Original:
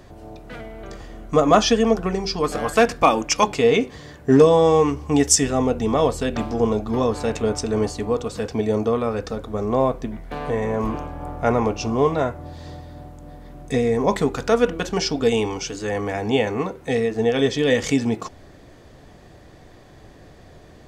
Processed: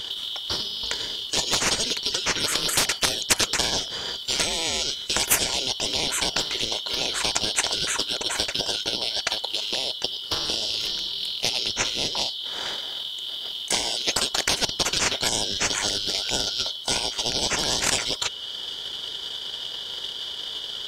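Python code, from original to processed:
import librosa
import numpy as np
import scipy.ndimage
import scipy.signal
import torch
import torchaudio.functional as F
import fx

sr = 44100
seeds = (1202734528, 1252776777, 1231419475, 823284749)

y = fx.band_shuffle(x, sr, order='3412')
y = fx.small_body(y, sr, hz=(390.0, 950.0, 1400.0), ring_ms=45, db=7)
y = fx.transient(y, sr, attack_db=7, sustain_db=-4)
y = fx.spectral_comp(y, sr, ratio=10.0)
y = F.gain(torch.from_numpy(y), -6.5).numpy()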